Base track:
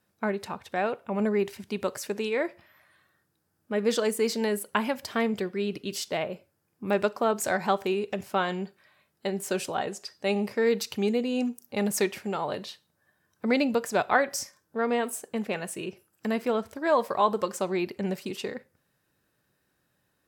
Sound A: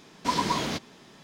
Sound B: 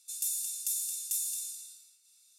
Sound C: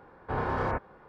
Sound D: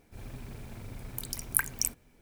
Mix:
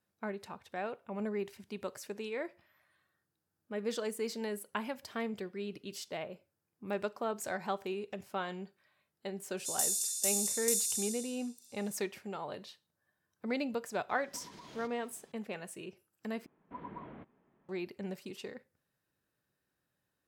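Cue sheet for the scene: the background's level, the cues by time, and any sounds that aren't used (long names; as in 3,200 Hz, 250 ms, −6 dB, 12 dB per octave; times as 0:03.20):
base track −10.5 dB
0:09.57: mix in B −9.5 dB + parametric band 5,800 Hz +14.5 dB 2.4 octaves
0:14.09: mix in A −13.5 dB + downward compressor 12 to 1, threshold −34 dBFS
0:16.46: overwrite with A −17.5 dB + Gaussian smoothing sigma 4.7 samples
not used: C, D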